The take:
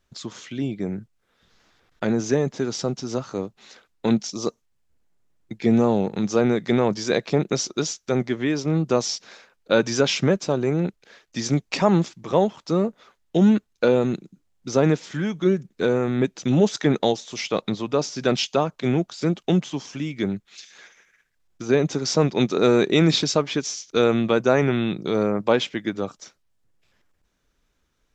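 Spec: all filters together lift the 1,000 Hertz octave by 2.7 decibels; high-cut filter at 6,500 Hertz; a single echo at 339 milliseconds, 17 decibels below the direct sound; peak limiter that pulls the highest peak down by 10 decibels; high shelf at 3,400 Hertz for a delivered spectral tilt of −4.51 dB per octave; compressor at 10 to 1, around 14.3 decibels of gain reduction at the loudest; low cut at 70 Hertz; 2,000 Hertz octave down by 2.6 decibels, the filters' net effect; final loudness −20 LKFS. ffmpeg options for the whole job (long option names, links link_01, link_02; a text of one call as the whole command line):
ffmpeg -i in.wav -af "highpass=70,lowpass=6500,equalizer=frequency=1000:width_type=o:gain=5,equalizer=frequency=2000:width_type=o:gain=-8,highshelf=frequency=3400:gain=7,acompressor=threshold=-27dB:ratio=10,alimiter=limit=-22dB:level=0:latency=1,aecho=1:1:339:0.141,volume=13.5dB" out.wav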